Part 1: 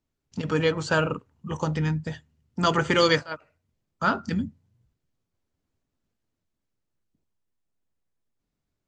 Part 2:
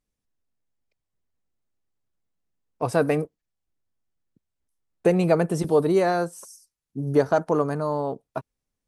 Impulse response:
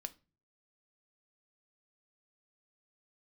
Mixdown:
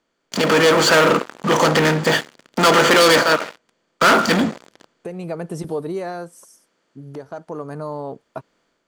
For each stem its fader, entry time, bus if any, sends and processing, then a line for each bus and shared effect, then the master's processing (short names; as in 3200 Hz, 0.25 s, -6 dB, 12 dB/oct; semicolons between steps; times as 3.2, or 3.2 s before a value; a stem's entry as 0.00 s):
-4.0 dB, 0.00 s, no send, per-bin compression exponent 0.6; sample leveller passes 5; HPF 290 Hz 12 dB/oct
-5.5 dB, 0.00 s, no send, compressor 2:1, threshold -28 dBFS, peak gain reduction 8.5 dB; auto duck -9 dB, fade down 1.35 s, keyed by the first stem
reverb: off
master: AGC gain up to 6.5 dB; soft clip -4 dBFS, distortion -21 dB